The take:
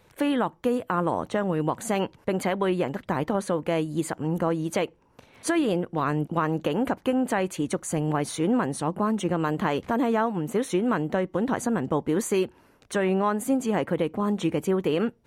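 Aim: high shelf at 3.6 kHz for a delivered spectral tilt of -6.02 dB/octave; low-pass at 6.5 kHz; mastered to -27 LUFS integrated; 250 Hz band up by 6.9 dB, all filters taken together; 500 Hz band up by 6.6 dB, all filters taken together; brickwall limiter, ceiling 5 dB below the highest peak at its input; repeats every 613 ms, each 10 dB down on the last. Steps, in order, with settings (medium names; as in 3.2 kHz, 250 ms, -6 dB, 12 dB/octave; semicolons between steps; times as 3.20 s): low-pass 6.5 kHz; peaking EQ 250 Hz +7 dB; peaking EQ 500 Hz +6 dB; treble shelf 3.6 kHz -6.5 dB; peak limiter -11.5 dBFS; feedback delay 613 ms, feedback 32%, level -10 dB; trim -5.5 dB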